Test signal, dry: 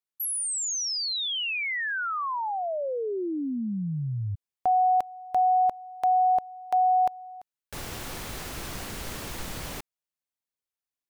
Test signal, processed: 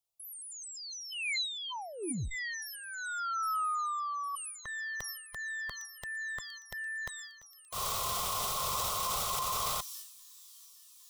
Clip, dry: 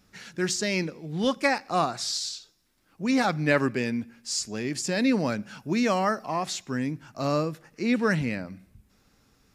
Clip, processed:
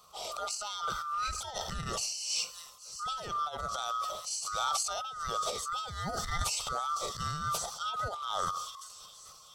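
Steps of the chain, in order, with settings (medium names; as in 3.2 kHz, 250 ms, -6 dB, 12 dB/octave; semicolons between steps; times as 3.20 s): split-band scrambler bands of 1 kHz; static phaser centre 700 Hz, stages 4; on a send: feedback echo behind a high-pass 807 ms, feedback 80%, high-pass 4.7 kHz, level -20 dB; on the sum: compressor with a negative ratio -37 dBFS, ratio -0.5; transient shaper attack -5 dB, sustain +11 dB; trim +2.5 dB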